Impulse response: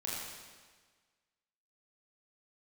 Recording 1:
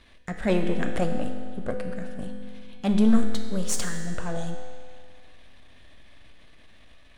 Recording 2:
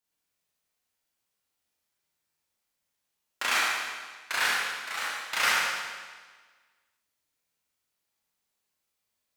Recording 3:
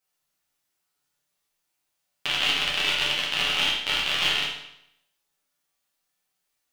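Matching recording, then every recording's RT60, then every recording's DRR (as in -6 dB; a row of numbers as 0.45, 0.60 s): 2; 2.1, 1.5, 0.75 s; 3.5, -6.5, -6.0 dB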